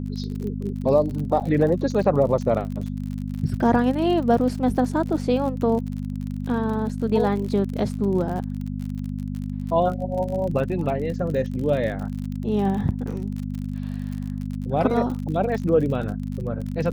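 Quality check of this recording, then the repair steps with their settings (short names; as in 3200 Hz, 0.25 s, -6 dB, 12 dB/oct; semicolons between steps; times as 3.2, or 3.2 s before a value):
crackle 45/s -30 dBFS
hum 50 Hz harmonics 5 -29 dBFS
1.4–1.41 gap 7.6 ms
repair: de-click; de-hum 50 Hz, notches 5; interpolate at 1.4, 7.6 ms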